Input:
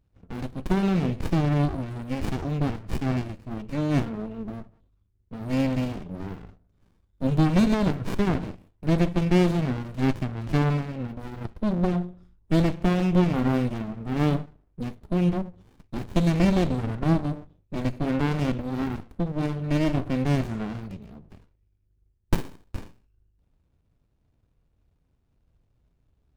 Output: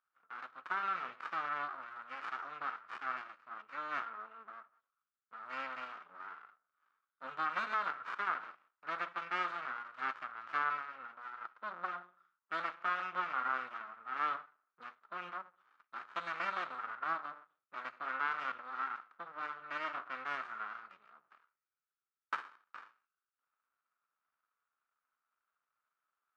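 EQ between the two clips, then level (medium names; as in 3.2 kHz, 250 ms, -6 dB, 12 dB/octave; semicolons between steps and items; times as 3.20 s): ladder band-pass 1.4 kHz, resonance 75%; +6.0 dB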